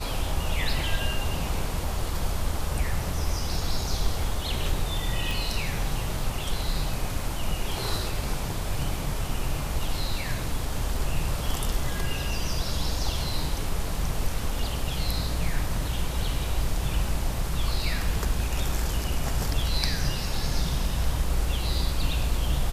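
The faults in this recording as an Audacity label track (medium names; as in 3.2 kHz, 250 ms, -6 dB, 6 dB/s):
5.310000	5.310000	pop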